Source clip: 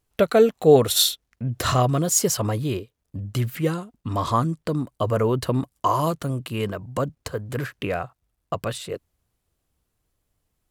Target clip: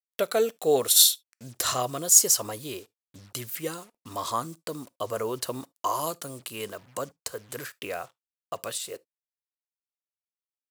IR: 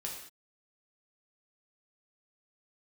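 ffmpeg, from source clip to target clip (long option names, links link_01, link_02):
-filter_complex "[0:a]acrusher=bits=7:mix=0:aa=0.5,bass=frequency=250:gain=-14,treble=frequency=4000:gain=12,asplit=2[link_01][link_02];[1:a]atrim=start_sample=2205,atrim=end_sample=3528[link_03];[link_02][link_03]afir=irnorm=-1:irlink=0,volume=-18.5dB[link_04];[link_01][link_04]amix=inputs=2:normalize=0,volume=-7dB"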